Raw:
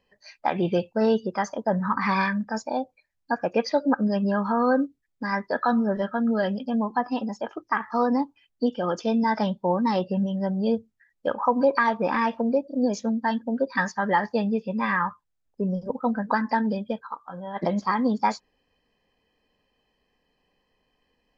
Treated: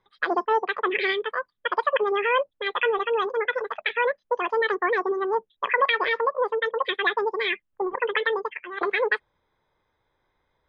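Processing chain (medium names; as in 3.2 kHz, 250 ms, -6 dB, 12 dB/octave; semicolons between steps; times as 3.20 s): speed mistake 7.5 ips tape played at 15 ips; low-pass 3.3 kHz 24 dB/octave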